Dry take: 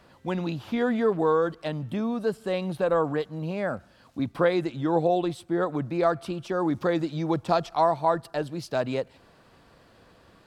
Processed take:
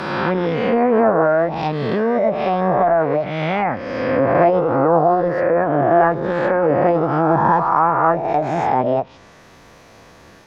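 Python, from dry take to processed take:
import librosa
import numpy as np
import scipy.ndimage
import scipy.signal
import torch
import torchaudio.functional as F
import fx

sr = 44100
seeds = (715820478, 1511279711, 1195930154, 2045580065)

y = fx.spec_swells(x, sr, rise_s=1.72)
y = fx.formant_shift(y, sr, semitones=5)
y = fx.env_lowpass_down(y, sr, base_hz=1000.0, full_db=-19.5)
y = F.gain(torch.from_numpy(y), 7.5).numpy()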